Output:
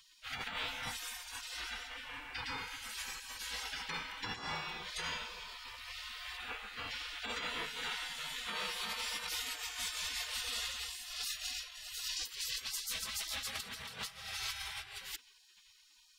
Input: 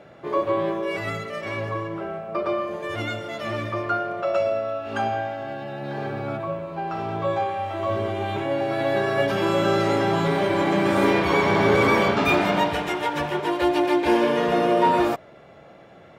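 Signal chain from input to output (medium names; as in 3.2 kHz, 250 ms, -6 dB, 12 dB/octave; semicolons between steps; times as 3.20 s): spectral gate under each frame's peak -30 dB weak; compressor with a negative ratio -47 dBFS, ratio -0.5; trim +7 dB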